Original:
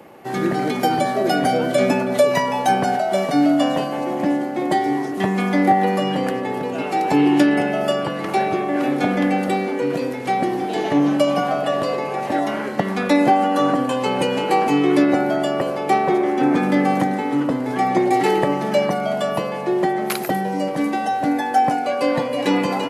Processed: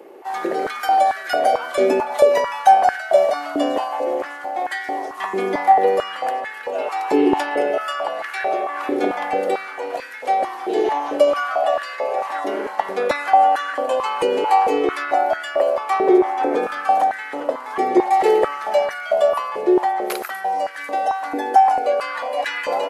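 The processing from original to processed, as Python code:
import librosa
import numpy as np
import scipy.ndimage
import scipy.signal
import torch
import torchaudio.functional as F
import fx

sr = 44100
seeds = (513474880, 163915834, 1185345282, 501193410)

y = fx.notch(x, sr, hz=2000.0, q=8.2, at=(16.55, 17.12))
y = fx.filter_held_highpass(y, sr, hz=4.5, low_hz=390.0, high_hz=1600.0)
y = y * librosa.db_to_amplitude(-4.0)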